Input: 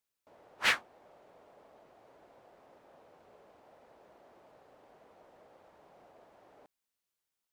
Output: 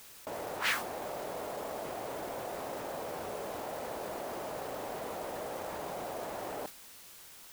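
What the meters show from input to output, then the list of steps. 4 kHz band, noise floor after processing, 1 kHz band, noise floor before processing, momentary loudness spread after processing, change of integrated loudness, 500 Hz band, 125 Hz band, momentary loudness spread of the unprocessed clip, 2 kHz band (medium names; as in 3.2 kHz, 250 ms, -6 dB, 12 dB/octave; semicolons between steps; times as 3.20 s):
-2.0 dB, -53 dBFS, +9.0 dB, under -85 dBFS, 8 LU, -8.0 dB, +16.5 dB, +14.0 dB, 4 LU, -2.0 dB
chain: modulation noise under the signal 12 dB; level flattener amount 70%; trim -5 dB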